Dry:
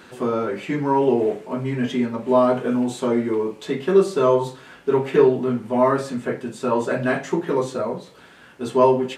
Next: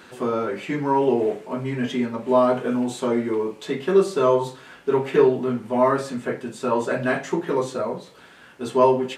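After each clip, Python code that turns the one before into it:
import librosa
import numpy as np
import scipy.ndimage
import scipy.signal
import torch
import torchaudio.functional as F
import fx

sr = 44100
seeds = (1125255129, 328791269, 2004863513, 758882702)

y = fx.low_shelf(x, sr, hz=400.0, db=-3.0)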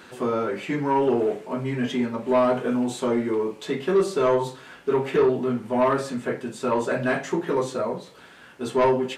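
y = 10.0 ** (-13.0 / 20.0) * np.tanh(x / 10.0 ** (-13.0 / 20.0))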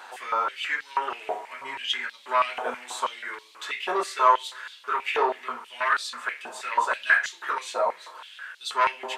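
y = fx.rev_spring(x, sr, rt60_s=3.5, pass_ms=(33, 52), chirp_ms=75, drr_db=18.0)
y = fx.filter_held_highpass(y, sr, hz=6.2, low_hz=810.0, high_hz=3800.0)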